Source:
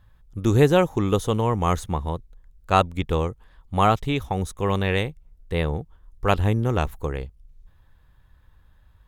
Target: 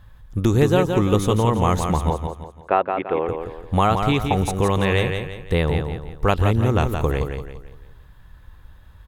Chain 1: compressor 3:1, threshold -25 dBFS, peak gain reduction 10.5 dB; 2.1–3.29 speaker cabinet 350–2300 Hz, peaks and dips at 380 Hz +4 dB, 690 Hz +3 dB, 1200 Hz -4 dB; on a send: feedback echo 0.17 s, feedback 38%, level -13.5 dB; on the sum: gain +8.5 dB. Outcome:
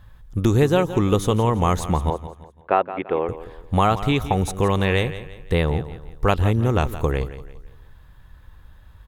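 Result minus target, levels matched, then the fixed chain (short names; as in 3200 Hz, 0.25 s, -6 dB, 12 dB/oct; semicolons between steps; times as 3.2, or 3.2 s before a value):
echo-to-direct -7.5 dB
compressor 3:1, threshold -25 dBFS, peak gain reduction 10.5 dB; 2.1–3.29 speaker cabinet 350–2300 Hz, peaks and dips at 380 Hz +4 dB, 690 Hz +3 dB, 1200 Hz -4 dB; on a send: feedback echo 0.17 s, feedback 38%, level -6 dB; on the sum: gain +8.5 dB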